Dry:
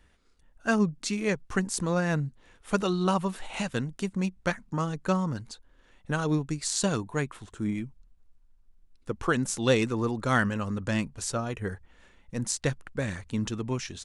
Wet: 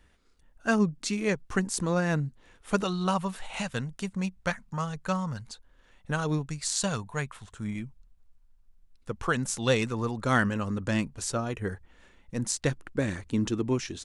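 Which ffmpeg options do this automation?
-af "asetnsamples=n=441:p=0,asendcmd='2.84 equalizer g -9;4.65 equalizer g -15;5.48 equalizer g -4.5;6.46 equalizer g -13;7.75 equalizer g -6;10.25 equalizer g 2;12.71 equalizer g 8',equalizer=f=320:t=o:w=0.78:g=0.5"

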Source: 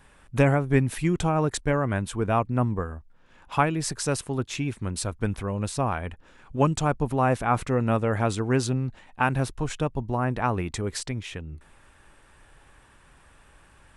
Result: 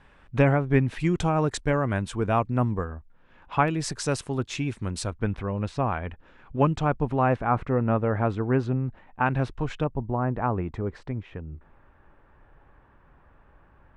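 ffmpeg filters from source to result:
-af "asetnsamples=n=441:p=0,asendcmd='1 lowpass f 7200;2.85 lowpass f 3000;3.68 lowpass f 7500;5.1 lowpass f 3000;7.36 lowpass f 1700;9.26 lowpass f 3200;9.84 lowpass f 1300',lowpass=3600"

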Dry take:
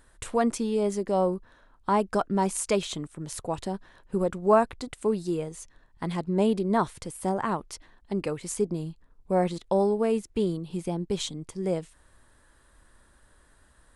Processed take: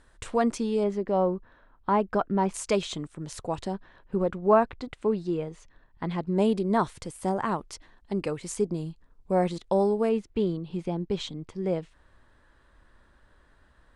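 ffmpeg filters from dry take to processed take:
-af "asetnsamples=n=441:p=0,asendcmd='0.84 lowpass f 2800;2.54 lowpass f 7100;3.74 lowpass f 3500;6.27 lowpass f 8700;10.09 lowpass f 3900',lowpass=6900"

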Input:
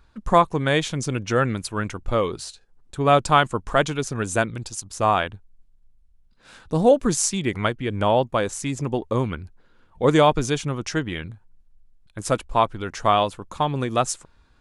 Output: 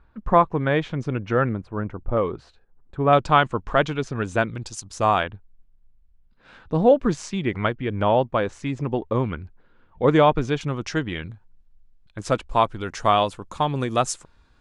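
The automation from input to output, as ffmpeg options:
-af "asetnsamples=n=441:p=0,asendcmd='1.49 lowpass f 1000;2.17 lowpass f 1600;3.13 lowpass f 3500;4.66 lowpass f 7200;5.23 lowpass f 2900;10.61 lowpass f 5400;12.48 lowpass f 9800',lowpass=2000"

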